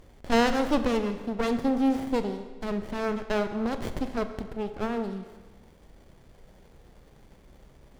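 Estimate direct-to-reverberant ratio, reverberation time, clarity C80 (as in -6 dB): 8.5 dB, 1.4 s, 11.0 dB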